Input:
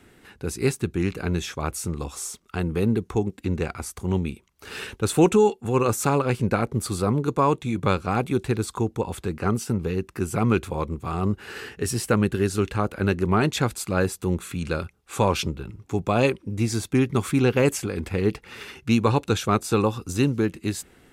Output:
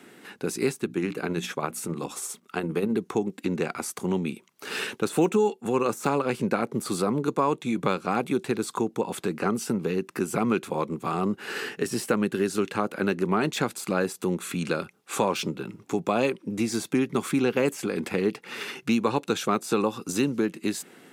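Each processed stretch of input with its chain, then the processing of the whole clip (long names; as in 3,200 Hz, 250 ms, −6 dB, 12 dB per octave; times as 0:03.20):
0:00.78–0:02.95: mains-hum notches 60/120/180/240/300 Hz + dynamic equaliser 5,500 Hz, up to −6 dB, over −47 dBFS, Q 1.2 + amplitude tremolo 15 Hz, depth 46%
whole clip: de-essing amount 60%; high-pass filter 170 Hz 24 dB per octave; downward compressor 2 to 1, threshold −30 dBFS; level +4.5 dB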